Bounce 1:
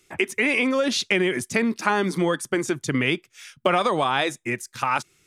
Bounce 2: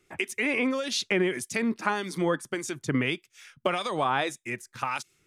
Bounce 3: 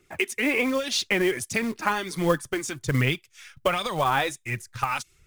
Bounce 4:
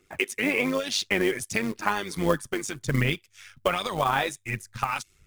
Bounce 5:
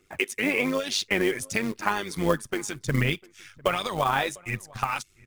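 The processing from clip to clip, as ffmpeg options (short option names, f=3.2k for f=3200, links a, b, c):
-filter_complex "[0:a]acrossover=split=2200[a][b];[a]aeval=exprs='val(0)*(1-0.7/2+0.7/2*cos(2*PI*1.7*n/s))':c=same[c];[b]aeval=exprs='val(0)*(1-0.7/2-0.7/2*cos(2*PI*1.7*n/s))':c=same[d];[c][d]amix=inputs=2:normalize=0,volume=-2dB"
-af "aphaser=in_gain=1:out_gain=1:delay=4.2:decay=0.41:speed=1.3:type=triangular,acrusher=bits=5:mode=log:mix=0:aa=0.000001,asubboost=boost=7.5:cutoff=97,volume=2.5dB"
-af "tremolo=f=100:d=0.621,volume=1.5dB"
-filter_complex "[0:a]asplit=2[a][b];[b]adelay=699.7,volume=-24dB,highshelf=f=4k:g=-15.7[c];[a][c]amix=inputs=2:normalize=0"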